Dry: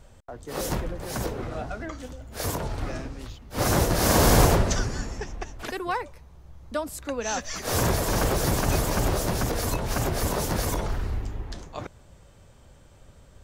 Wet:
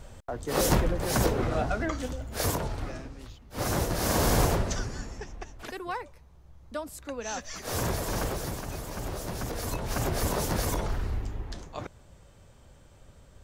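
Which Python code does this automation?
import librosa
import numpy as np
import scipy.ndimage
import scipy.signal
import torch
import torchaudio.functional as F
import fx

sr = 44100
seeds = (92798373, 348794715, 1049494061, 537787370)

y = fx.gain(x, sr, db=fx.line((2.19, 5.0), (2.98, -6.0), (8.2, -6.0), (8.72, -13.5), (10.14, -2.0)))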